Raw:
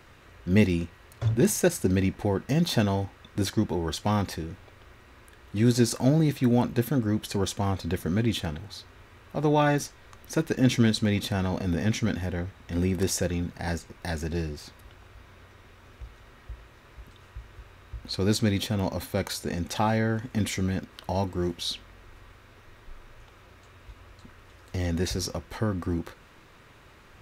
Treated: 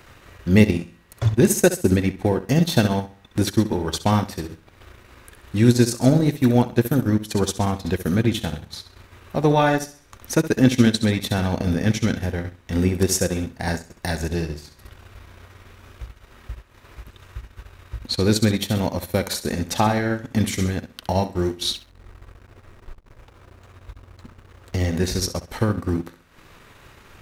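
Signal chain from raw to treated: treble shelf 6.5 kHz +5 dB; flutter echo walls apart 11.3 m, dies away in 0.52 s; transient shaper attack +3 dB, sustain -11 dB; 21.73–25.06 s: hysteresis with a dead band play -49.5 dBFS; trim +4.5 dB

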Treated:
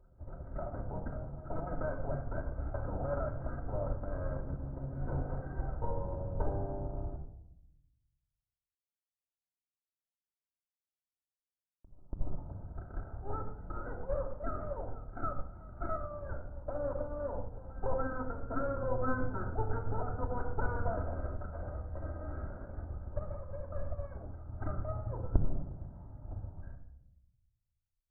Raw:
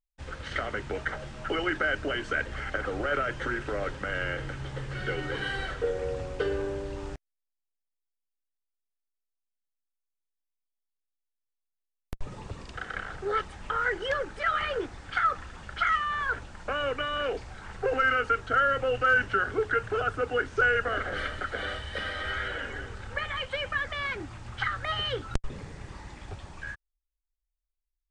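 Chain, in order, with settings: comb filter that takes the minimum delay 1.4 ms; Gaussian low-pass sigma 10 samples; pre-echo 285 ms -16.5 dB; reverberation RT60 0.85 s, pre-delay 3 ms, DRR 1 dB; upward expansion 1.5:1, over -40 dBFS; trim +2 dB

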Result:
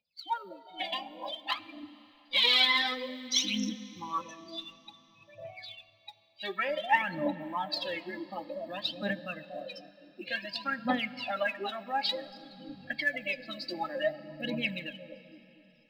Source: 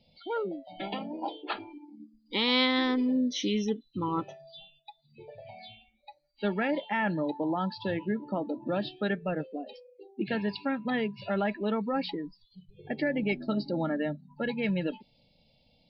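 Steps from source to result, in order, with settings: compression 1.5:1, threshold -33 dBFS, peak gain reduction 5 dB; tilt EQ +2.5 dB/octave; on a send: bucket-brigade echo 237 ms, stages 1024, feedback 67%, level -6.5 dB; on the sum: spectral noise reduction 28 dB; bass shelf 290 Hz -9.5 dB; phaser 0.55 Hz, delay 3 ms, feedback 79%; plate-style reverb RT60 3.9 s, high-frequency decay 0.95×, DRR 16.5 dB

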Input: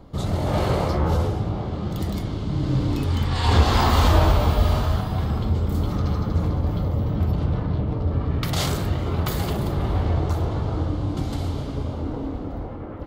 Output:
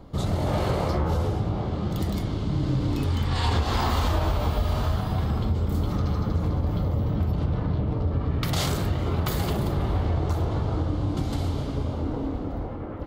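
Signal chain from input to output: compression, threshold -20 dBFS, peak gain reduction 9.5 dB

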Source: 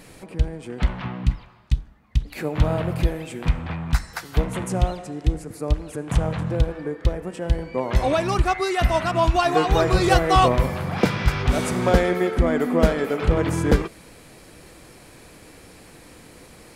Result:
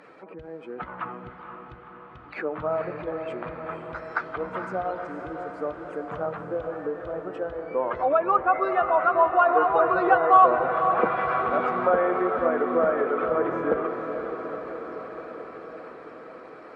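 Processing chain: spectral contrast enhancement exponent 1.5; high-pass 510 Hz 12 dB/octave; peaking EQ 1.3 kHz +12 dB 0.58 oct; in parallel at -3 dB: compression, threshold -28 dBFS, peak gain reduction 18 dB; on the sum: tape spacing loss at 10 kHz 33 dB; on a send: echo that smears into a reverb 494 ms, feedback 70%, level -8 dB; on the sum: low-pass that closes with the level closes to 2.7 kHz, closed at -18 dBFS

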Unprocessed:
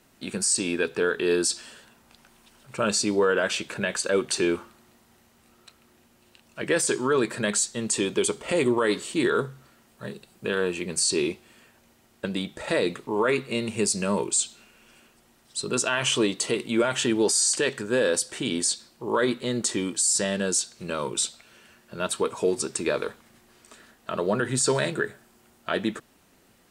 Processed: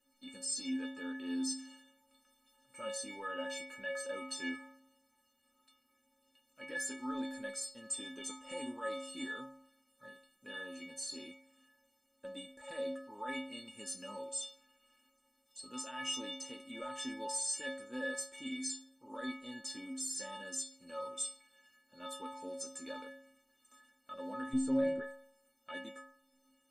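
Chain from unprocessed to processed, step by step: 24.53–25.03 s: tilt EQ -4 dB/octave; inharmonic resonator 260 Hz, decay 0.83 s, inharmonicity 0.03; trim +4.5 dB

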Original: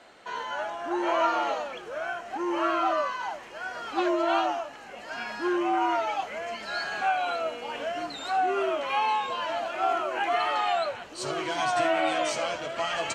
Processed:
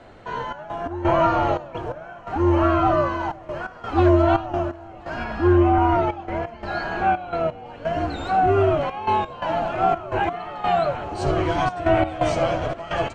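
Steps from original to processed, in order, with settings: octave divider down 2 oct, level -6 dB; tilt EQ -3.5 dB/octave; echo whose repeats swap between lows and highs 511 ms, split 900 Hz, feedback 71%, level -11 dB; trance gate "xxx.x.xxx.x..xxx" 86 bpm -12 dB; 5.24–7.66 s: treble shelf 6.5 kHz -10 dB; trim +5 dB

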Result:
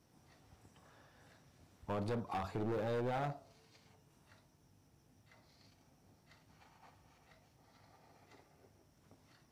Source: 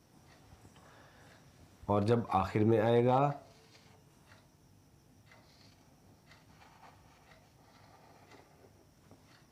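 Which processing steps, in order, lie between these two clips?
dynamic bell 2 kHz, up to -6 dB, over -54 dBFS, Q 1.8; overload inside the chain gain 28.5 dB; trim -5.5 dB

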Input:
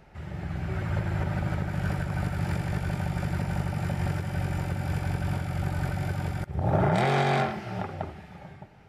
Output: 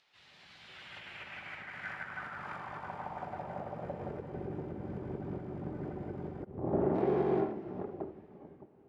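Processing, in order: harmony voices -12 st -5 dB, +5 st -6 dB; band-pass sweep 4 kHz -> 360 Hz, 0.57–4.54 s

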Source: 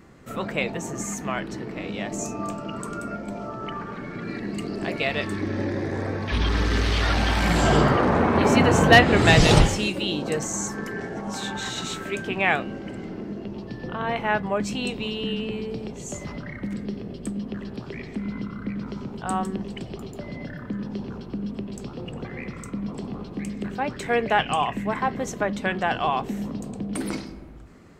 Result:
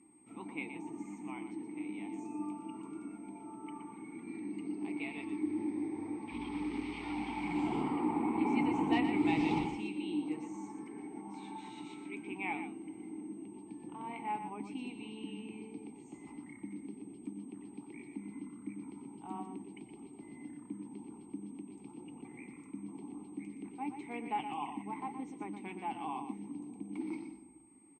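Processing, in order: flange 1.9 Hz, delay 3.5 ms, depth 3.1 ms, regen -70%; whistle 8.4 kHz -35 dBFS; vowel filter u; delay 120 ms -9 dB; trim +1.5 dB

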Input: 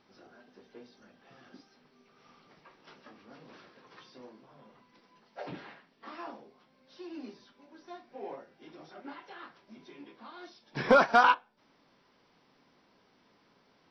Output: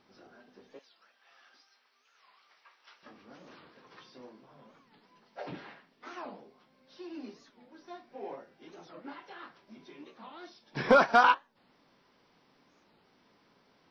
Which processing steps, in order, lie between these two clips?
0.80–3.03 s: high-pass 1.1 kHz 12 dB/octave; warped record 45 rpm, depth 250 cents

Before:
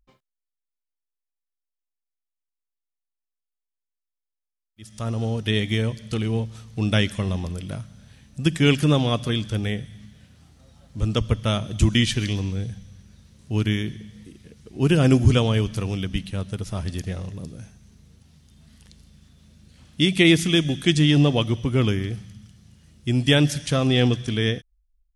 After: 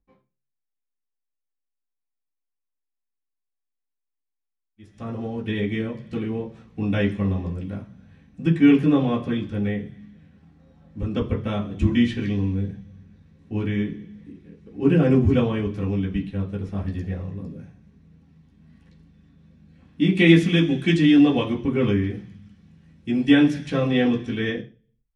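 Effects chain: low-pass 1.1 kHz 6 dB/octave, from 20.17 s 3.1 kHz, from 21.53 s 1.9 kHz; reverberation RT60 0.30 s, pre-delay 3 ms, DRR -6 dB; trim -7.5 dB

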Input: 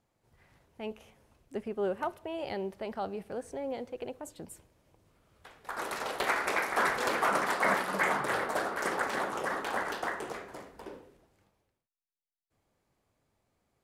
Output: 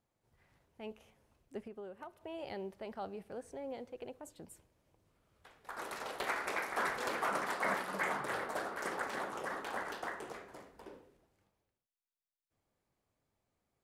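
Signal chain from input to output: 1.64–2.21 s: compression 6:1, threshold -38 dBFS, peak gain reduction 10 dB; trim -7 dB

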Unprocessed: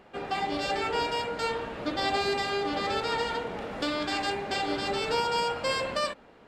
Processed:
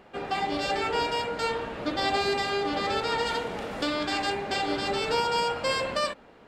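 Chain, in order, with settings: 3.25–3.81 s: treble shelf 3.8 kHz -> 5.4 kHz +8.5 dB; trim +1.5 dB

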